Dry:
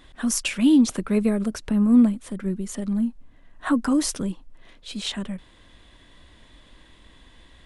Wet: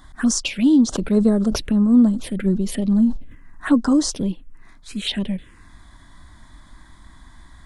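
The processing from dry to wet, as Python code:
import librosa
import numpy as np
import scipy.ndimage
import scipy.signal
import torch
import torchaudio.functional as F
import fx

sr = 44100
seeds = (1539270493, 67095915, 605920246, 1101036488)

y = fx.rider(x, sr, range_db=3, speed_s=0.5)
y = fx.env_phaser(y, sr, low_hz=430.0, high_hz=2400.0, full_db=-19.5)
y = fx.sustainer(y, sr, db_per_s=91.0, at=(0.92, 3.68), fade=0.02)
y = F.gain(torch.from_numpy(y), 4.5).numpy()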